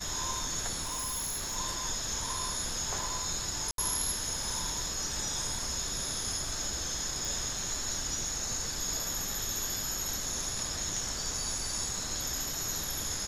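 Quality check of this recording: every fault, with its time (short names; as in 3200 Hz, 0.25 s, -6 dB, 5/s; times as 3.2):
0.82–1.57 clipped -31.5 dBFS
3.71–3.78 gap 72 ms
7.25 pop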